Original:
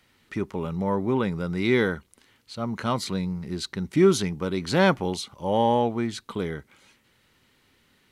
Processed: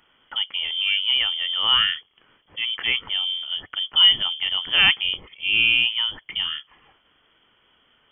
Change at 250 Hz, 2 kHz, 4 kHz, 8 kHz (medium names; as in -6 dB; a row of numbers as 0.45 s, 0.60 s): -22.5 dB, +9.5 dB, +20.0 dB, under -40 dB